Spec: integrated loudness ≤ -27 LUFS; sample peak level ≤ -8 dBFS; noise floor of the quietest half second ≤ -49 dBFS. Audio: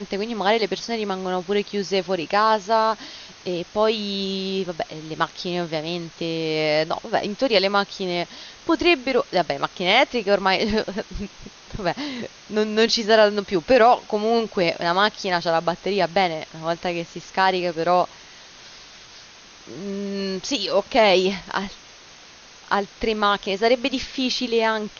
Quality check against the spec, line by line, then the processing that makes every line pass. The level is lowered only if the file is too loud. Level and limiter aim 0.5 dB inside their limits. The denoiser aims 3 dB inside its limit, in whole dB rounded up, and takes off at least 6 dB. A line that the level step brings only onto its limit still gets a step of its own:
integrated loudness -22.0 LUFS: fail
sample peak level -5.5 dBFS: fail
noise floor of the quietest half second -46 dBFS: fail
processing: gain -5.5 dB

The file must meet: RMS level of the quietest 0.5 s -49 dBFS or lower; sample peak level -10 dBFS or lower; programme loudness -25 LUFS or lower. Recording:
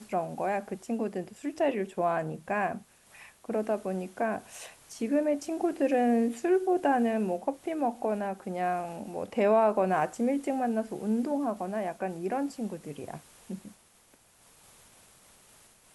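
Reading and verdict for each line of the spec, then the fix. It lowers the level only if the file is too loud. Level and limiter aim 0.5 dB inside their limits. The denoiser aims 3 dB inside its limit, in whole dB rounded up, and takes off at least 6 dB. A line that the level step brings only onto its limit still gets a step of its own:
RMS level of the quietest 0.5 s -62 dBFS: OK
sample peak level -13.0 dBFS: OK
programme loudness -30.0 LUFS: OK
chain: none

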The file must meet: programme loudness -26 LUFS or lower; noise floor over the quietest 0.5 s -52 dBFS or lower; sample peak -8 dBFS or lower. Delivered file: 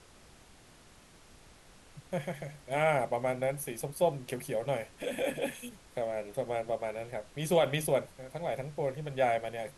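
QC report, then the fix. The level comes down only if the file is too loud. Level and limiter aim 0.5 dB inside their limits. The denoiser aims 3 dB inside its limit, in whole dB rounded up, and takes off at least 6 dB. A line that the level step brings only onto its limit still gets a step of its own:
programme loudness -33.5 LUFS: OK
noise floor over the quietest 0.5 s -57 dBFS: OK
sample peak -15.0 dBFS: OK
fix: none

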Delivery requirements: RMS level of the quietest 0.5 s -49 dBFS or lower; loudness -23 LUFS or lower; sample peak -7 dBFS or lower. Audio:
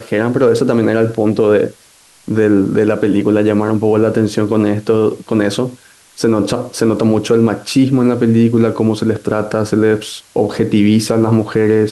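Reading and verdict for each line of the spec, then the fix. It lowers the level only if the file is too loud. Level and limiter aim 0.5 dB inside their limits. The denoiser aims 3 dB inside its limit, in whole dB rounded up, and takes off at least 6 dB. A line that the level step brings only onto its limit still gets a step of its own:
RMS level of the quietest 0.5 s -47 dBFS: fail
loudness -14.0 LUFS: fail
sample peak -2.5 dBFS: fail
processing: gain -9.5 dB

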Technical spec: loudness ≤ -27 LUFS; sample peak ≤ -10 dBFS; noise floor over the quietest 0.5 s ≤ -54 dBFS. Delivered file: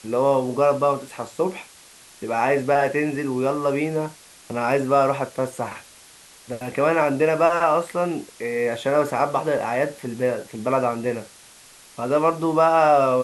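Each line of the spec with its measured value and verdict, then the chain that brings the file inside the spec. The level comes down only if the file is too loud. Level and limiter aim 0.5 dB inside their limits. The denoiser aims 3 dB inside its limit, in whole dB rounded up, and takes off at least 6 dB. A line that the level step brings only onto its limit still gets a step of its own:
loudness -22.0 LUFS: fail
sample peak -6.0 dBFS: fail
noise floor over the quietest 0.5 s -48 dBFS: fail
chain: denoiser 6 dB, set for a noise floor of -48 dBFS; gain -5.5 dB

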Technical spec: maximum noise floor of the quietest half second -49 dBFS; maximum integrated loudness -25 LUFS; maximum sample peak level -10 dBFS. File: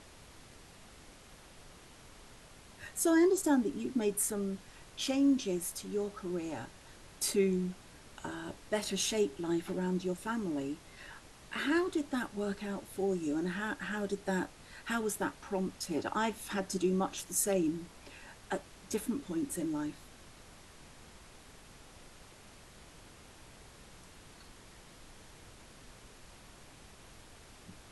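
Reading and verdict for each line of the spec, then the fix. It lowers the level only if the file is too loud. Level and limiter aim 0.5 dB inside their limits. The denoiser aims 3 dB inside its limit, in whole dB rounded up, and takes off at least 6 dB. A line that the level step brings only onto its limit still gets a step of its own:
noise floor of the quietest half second -55 dBFS: OK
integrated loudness -34.0 LUFS: OK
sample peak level -16.0 dBFS: OK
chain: none

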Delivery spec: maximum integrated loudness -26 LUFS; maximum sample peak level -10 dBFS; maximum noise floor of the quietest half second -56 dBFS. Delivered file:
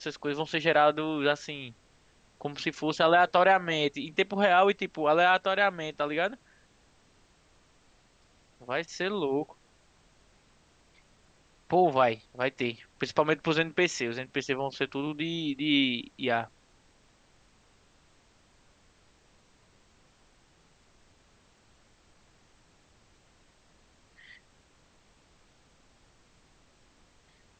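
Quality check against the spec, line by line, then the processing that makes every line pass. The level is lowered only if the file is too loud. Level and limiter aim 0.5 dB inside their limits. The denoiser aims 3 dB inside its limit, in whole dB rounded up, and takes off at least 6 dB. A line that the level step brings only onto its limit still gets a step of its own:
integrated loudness -27.5 LUFS: OK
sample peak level -9.0 dBFS: fail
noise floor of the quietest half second -63 dBFS: OK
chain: limiter -10.5 dBFS

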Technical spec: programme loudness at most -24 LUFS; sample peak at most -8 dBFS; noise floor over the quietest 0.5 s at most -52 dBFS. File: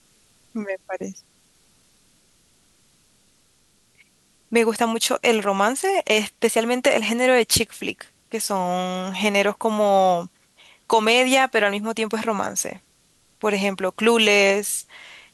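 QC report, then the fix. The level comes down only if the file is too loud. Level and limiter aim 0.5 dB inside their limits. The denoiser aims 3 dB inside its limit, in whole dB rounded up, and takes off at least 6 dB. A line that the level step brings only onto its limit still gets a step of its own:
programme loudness -20.5 LUFS: fail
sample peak -5.0 dBFS: fail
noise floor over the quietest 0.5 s -61 dBFS: OK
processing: gain -4 dB

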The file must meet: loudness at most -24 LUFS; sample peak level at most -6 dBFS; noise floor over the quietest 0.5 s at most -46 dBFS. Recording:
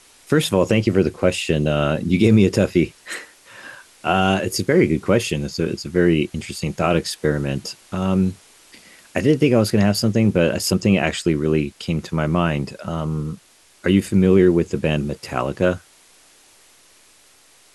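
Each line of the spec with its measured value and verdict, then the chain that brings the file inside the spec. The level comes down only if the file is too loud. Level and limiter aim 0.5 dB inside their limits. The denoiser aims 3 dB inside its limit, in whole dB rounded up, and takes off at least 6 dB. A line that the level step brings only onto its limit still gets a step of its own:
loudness -19.5 LUFS: fail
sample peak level -4.0 dBFS: fail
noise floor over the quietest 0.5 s -53 dBFS: OK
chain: gain -5 dB

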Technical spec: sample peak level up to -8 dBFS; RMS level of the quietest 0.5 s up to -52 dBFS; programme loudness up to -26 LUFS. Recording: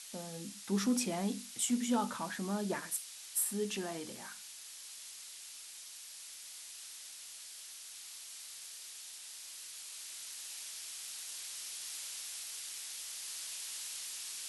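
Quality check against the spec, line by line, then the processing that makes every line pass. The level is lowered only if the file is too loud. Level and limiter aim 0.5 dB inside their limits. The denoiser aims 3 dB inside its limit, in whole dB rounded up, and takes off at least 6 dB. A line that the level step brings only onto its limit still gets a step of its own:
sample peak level -18.5 dBFS: OK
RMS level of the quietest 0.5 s -50 dBFS: fail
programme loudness -39.5 LUFS: OK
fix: denoiser 6 dB, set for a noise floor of -50 dBFS

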